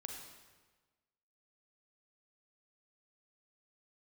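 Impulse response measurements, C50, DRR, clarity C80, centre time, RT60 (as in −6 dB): 3.0 dB, 1.5 dB, 5.0 dB, 51 ms, 1.3 s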